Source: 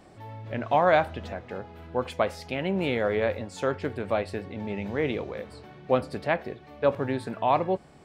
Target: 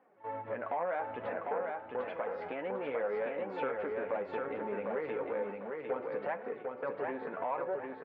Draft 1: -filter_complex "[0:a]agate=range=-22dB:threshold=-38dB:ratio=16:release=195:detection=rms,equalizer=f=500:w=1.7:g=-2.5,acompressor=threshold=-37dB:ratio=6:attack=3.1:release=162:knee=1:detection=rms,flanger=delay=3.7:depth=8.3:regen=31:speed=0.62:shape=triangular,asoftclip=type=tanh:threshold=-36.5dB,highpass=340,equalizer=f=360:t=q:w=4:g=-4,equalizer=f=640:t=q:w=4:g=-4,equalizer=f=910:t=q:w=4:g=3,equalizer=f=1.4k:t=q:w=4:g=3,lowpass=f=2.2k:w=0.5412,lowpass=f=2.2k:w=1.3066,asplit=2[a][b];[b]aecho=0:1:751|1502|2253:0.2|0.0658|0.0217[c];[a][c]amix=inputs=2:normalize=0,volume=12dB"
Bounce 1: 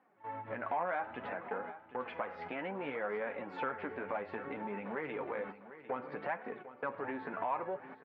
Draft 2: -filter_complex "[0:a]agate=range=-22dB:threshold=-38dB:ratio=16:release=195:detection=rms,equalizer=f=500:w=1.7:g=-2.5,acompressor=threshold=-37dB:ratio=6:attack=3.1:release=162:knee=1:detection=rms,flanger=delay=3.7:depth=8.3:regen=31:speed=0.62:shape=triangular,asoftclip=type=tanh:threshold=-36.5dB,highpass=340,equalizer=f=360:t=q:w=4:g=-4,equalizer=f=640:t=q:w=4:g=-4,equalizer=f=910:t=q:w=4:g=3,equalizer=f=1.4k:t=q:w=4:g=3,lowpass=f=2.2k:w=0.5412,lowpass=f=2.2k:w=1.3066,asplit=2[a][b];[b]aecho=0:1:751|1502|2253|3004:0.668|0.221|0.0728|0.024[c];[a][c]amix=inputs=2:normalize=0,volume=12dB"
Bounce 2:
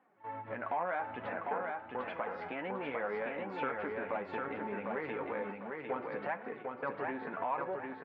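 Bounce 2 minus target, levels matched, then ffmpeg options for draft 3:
500 Hz band -2.5 dB
-filter_complex "[0:a]agate=range=-22dB:threshold=-38dB:ratio=16:release=195:detection=rms,equalizer=f=500:w=1.7:g=6.5,acompressor=threshold=-37dB:ratio=6:attack=3.1:release=162:knee=1:detection=rms,flanger=delay=3.7:depth=8.3:regen=31:speed=0.62:shape=triangular,asoftclip=type=tanh:threshold=-36.5dB,highpass=340,equalizer=f=360:t=q:w=4:g=-4,equalizer=f=640:t=q:w=4:g=-4,equalizer=f=910:t=q:w=4:g=3,equalizer=f=1.4k:t=q:w=4:g=3,lowpass=f=2.2k:w=0.5412,lowpass=f=2.2k:w=1.3066,asplit=2[a][b];[b]aecho=0:1:751|1502|2253|3004:0.668|0.221|0.0728|0.024[c];[a][c]amix=inputs=2:normalize=0,volume=12dB"

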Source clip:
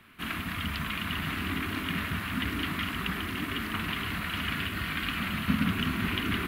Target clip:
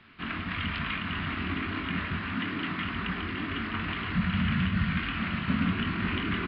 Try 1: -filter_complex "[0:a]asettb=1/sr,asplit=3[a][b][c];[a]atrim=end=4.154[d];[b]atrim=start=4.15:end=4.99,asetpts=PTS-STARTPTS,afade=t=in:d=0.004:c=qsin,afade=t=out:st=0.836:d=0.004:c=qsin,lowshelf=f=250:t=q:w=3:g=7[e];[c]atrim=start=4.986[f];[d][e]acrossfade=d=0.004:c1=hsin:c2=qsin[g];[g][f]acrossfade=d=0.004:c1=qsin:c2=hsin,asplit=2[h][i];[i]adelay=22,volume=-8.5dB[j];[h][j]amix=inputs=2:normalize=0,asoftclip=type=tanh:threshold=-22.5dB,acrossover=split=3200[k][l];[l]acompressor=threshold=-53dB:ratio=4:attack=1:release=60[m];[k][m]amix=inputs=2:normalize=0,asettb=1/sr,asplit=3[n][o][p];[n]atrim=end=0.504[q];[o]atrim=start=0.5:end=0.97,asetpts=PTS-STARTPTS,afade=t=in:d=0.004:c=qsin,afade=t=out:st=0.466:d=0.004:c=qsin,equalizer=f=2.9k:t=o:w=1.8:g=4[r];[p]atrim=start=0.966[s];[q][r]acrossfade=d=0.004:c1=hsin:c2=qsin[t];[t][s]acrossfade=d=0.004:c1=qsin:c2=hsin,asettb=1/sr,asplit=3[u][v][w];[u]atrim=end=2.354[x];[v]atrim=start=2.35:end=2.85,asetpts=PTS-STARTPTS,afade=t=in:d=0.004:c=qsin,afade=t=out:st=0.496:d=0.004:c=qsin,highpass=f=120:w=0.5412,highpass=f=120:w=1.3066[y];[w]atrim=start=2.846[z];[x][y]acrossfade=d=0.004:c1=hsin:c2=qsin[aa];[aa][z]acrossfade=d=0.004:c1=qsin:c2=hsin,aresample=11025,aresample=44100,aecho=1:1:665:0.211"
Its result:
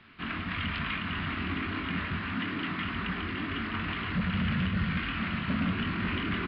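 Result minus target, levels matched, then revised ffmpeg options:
soft clip: distortion +13 dB
-filter_complex "[0:a]asettb=1/sr,asplit=3[a][b][c];[a]atrim=end=4.154[d];[b]atrim=start=4.15:end=4.99,asetpts=PTS-STARTPTS,afade=t=in:d=0.004:c=qsin,afade=t=out:st=0.836:d=0.004:c=qsin,lowshelf=f=250:t=q:w=3:g=7[e];[c]atrim=start=4.986[f];[d][e]acrossfade=d=0.004:c1=hsin:c2=qsin[g];[g][f]acrossfade=d=0.004:c1=qsin:c2=hsin,asplit=2[h][i];[i]adelay=22,volume=-8.5dB[j];[h][j]amix=inputs=2:normalize=0,asoftclip=type=tanh:threshold=-13.5dB,acrossover=split=3200[k][l];[l]acompressor=threshold=-53dB:ratio=4:attack=1:release=60[m];[k][m]amix=inputs=2:normalize=0,asettb=1/sr,asplit=3[n][o][p];[n]atrim=end=0.504[q];[o]atrim=start=0.5:end=0.97,asetpts=PTS-STARTPTS,afade=t=in:d=0.004:c=qsin,afade=t=out:st=0.466:d=0.004:c=qsin,equalizer=f=2.9k:t=o:w=1.8:g=4[r];[p]atrim=start=0.966[s];[q][r]acrossfade=d=0.004:c1=hsin:c2=qsin[t];[t][s]acrossfade=d=0.004:c1=qsin:c2=hsin,asettb=1/sr,asplit=3[u][v][w];[u]atrim=end=2.354[x];[v]atrim=start=2.35:end=2.85,asetpts=PTS-STARTPTS,afade=t=in:d=0.004:c=qsin,afade=t=out:st=0.496:d=0.004:c=qsin,highpass=f=120:w=0.5412,highpass=f=120:w=1.3066[y];[w]atrim=start=2.846[z];[x][y]acrossfade=d=0.004:c1=hsin:c2=qsin[aa];[aa][z]acrossfade=d=0.004:c1=qsin:c2=hsin,aresample=11025,aresample=44100,aecho=1:1:665:0.211"

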